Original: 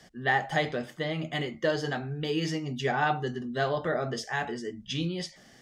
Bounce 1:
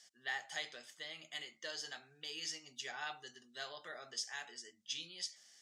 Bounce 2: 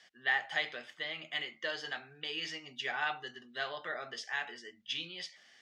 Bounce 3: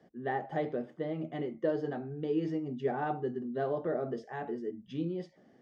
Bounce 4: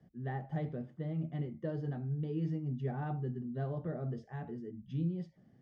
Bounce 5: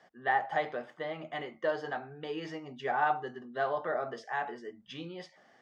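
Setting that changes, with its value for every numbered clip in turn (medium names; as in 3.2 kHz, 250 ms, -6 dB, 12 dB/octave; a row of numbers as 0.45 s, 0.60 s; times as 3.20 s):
band-pass filter, frequency: 6.9 kHz, 2.7 kHz, 350 Hz, 130 Hz, 920 Hz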